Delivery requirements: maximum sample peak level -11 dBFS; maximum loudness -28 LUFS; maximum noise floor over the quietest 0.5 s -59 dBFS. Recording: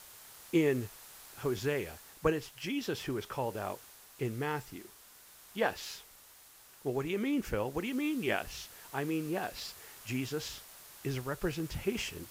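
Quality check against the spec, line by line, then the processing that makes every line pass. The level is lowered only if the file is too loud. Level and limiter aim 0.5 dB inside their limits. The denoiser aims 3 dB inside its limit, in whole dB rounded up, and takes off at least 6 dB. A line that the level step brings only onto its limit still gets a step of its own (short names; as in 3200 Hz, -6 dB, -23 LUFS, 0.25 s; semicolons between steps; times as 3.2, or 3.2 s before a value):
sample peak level -15.5 dBFS: OK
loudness -35.5 LUFS: OK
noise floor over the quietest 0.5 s -57 dBFS: fail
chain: denoiser 6 dB, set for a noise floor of -57 dBFS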